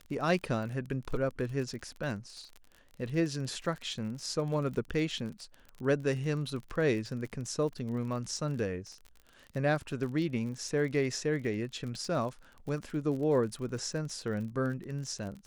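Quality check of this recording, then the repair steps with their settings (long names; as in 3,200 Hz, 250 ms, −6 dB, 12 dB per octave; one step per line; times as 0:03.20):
surface crackle 39 per second −38 dBFS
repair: click removal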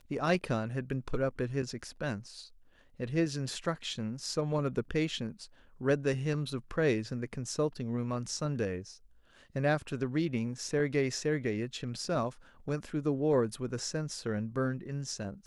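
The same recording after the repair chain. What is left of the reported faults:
none of them is left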